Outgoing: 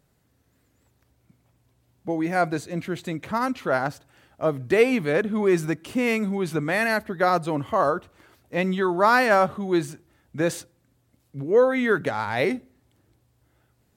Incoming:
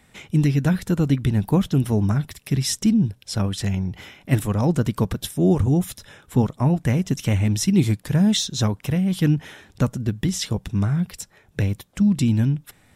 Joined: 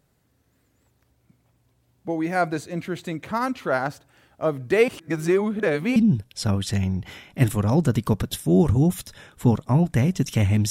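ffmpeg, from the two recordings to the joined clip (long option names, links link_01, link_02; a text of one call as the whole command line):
ffmpeg -i cue0.wav -i cue1.wav -filter_complex "[0:a]apad=whole_dur=10.7,atrim=end=10.7,asplit=2[link_01][link_02];[link_01]atrim=end=4.882[link_03];[link_02]atrim=start=4.878:end=5.962,asetpts=PTS-STARTPTS,areverse[link_04];[1:a]atrim=start=2.868:end=7.61[link_05];[link_03][link_04]acrossfade=duration=0.004:curve1=hsin:curve2=hsin[link_06];[link_06][link_05]acrossfade=duration=0.004:curve1=hsin:curve2=hsin" out.wav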